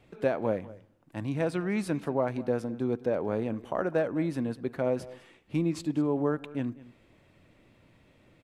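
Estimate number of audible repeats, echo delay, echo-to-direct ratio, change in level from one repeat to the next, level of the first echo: 1, 0.203 s, -19.5 dB, no steady repeat, -19.5 dB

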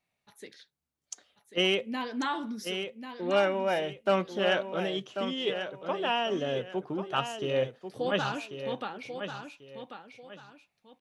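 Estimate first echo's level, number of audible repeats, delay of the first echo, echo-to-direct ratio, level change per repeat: -8.5 dB, 2, 1.091 s, -8.0 dB, -11.0 dB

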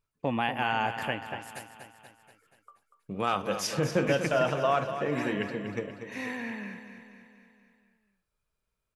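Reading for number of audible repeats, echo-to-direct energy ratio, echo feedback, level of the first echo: 5, -8.5 dB, 56%, -10.0 dB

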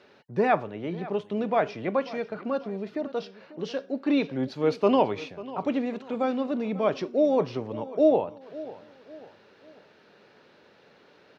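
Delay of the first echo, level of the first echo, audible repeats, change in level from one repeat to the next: 0.543 s, -17.5 dB, 3, -8.0 dB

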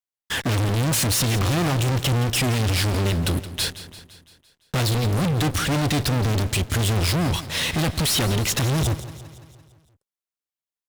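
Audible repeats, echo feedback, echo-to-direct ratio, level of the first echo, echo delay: 5, 58%, -13.0 dB, -15.0 dB, 0.17 s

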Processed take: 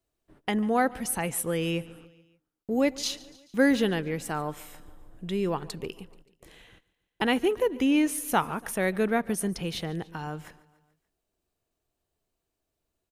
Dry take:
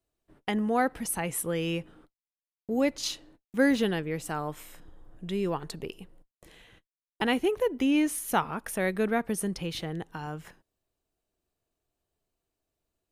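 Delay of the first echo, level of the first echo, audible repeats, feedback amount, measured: 0.144 s, -21.5 dB, 3, 58%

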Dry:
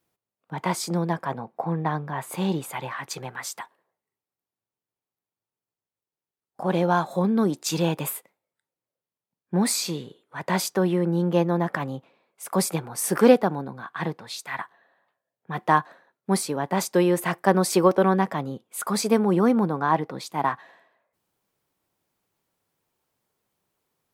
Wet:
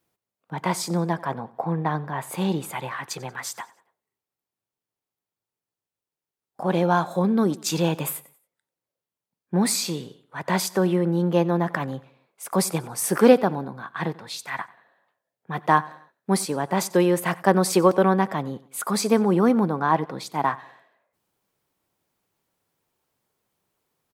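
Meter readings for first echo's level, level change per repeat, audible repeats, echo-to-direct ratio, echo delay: -21.0 dB, -8.0 dB, 2, -20.0 dB, 92 ms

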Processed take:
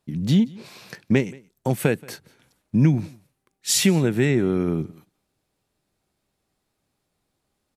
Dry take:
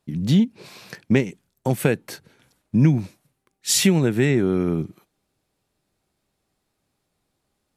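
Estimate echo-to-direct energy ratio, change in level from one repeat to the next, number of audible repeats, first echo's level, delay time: -24.0 dB, no steady repeat, 1, -24.0 dB, 0.177 s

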